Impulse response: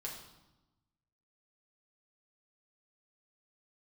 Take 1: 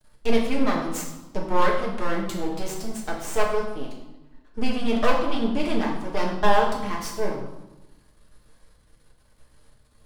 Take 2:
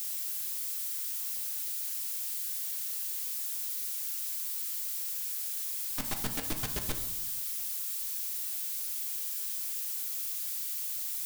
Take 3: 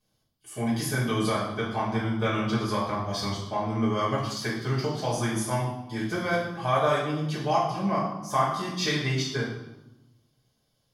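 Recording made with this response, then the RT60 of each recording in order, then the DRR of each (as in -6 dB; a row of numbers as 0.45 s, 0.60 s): 1; 1.0 s, 1.0 s, 1.0 s; -3.0 dB, 3.5 dB, -11.0 dB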